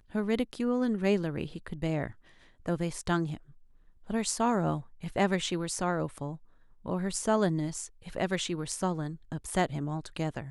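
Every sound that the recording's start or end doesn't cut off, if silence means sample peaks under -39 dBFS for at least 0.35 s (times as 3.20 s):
2.66–3.37 s
4.10–6.35 s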